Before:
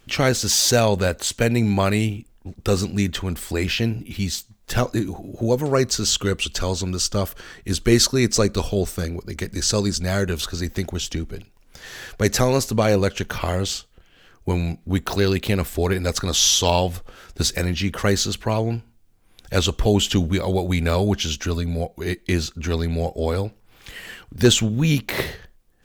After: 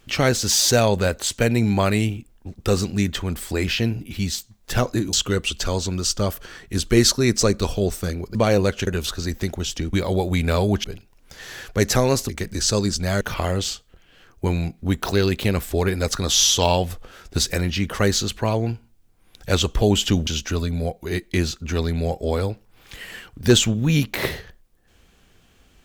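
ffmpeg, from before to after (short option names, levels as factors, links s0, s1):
-filter_complex "[0:a]asplit=9[s0][s1][s2][s3][s4][s5][s6][s7][s8];[s0]atrim=end=5.132[s9];[s1]atrim=start=6.078:end=9.302[s10];[s2]atrim=start=12.728:end=13.252[s11];[s3]atrim=start=10.218:end=11.282[s12];[s4]atrim=start=20.308:end=21.222[s13];[s5]atrim=start=11.278:end=12.732[s14];[s6]atrim=start=9.298:end=10.222[s15];[s7]atrim=start=13.248:end=20.312[s16];[s8]atrim=start=21.218[s17];[s9][s10]acrossfade=d=0.004:c1=hsin:c2=hsin[s18];[s18][s11]acrossfade=d=0.004:c1=hsin:c2=hsin[s19];[s19][s12]acrossfade=d=0.004:c1=hsin:c2=hsin[s20];[s20][s13]acrossfade=d=0.004:c1=hsin:c2=hsin[s21];[s21][s14]acrossfade=d=0.004:c1=hsin:c2=hsin[s22];[s22][s15]acrossfade=d=0.004:c1=hsin:c2=hsin[s23];[s23][s16]acrossfade=d=0.004:c1=hsin:c2=hsin[s24];[s24][s17]acrossfade=d=0.004:c1=hsin:c2=hsin"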